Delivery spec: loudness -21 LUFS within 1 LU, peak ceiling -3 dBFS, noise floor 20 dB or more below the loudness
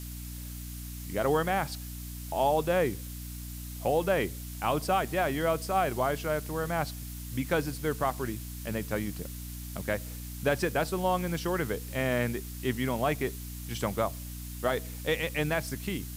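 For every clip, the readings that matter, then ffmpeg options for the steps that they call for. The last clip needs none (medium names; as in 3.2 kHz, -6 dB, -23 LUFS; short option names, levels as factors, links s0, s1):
hum 60 Hz; highest harmonic 300 Hz; hum level -38 dBFS; noise floor -40 dBFS; noise floor target -51 dBFS; loudness -31.0 LUFS; peak level -15.0 dBFS; loudness target -21.0 LUFS
-> -af "bandreject=f=60:t=h:w=6,bandreject=f=120:t=h:w=6,bandreject=f=180:t=h:w=6,bandreject=f=240:t=h:w=6,bandreject=f=300:t=h:w=6"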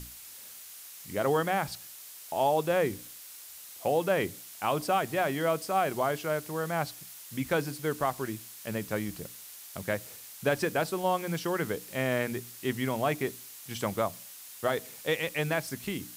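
hum not found; noise floor -47 dBFS; noise floor target -51 dBFS
-> -af "afftdn=nr=6:nf=-47"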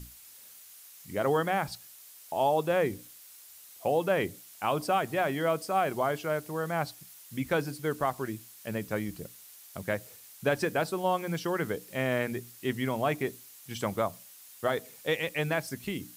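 noise floor -52 dBFS; loudness -31.0 LUFS; peak level -15.5 dBFS; loudness target -21.0 LUFS
-> -af "volume=3.16"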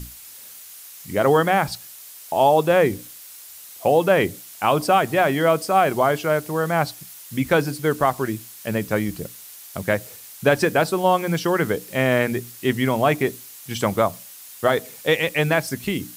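loudness -21.0 LUFS; peak level -5.5 dBFS; noise floor -42 dBFS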